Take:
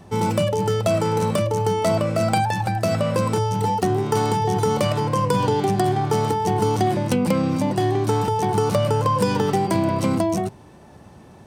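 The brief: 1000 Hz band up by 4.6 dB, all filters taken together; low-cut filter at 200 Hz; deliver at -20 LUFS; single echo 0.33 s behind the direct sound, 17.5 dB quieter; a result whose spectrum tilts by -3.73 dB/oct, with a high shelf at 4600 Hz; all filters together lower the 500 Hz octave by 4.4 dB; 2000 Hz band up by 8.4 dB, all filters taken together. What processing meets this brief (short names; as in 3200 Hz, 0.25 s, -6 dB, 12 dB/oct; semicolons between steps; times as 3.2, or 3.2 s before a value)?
HPF 200 Hz; bell 500 Hz -8 dB; bell 1000 Hz +6.5 dB; bell 2000 Hz +8 dB; high shelf 4600 Hz +6 dB; echo 0.33 s -17.5 dB; gain +0.5 dB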